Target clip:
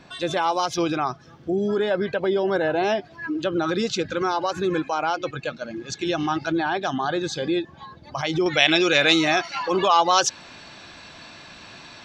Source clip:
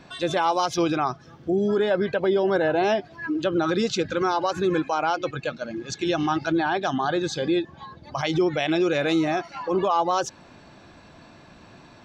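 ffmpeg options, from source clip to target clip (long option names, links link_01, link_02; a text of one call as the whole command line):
ffmpeg -i in.wav -af "asetnsamples=nb_out_samples=441:pad=0,asendcmd='8.46 equalizer g 14.5',equalizer=frequency=4000:width=0.32:gain=2,volume=-1dB" out.wav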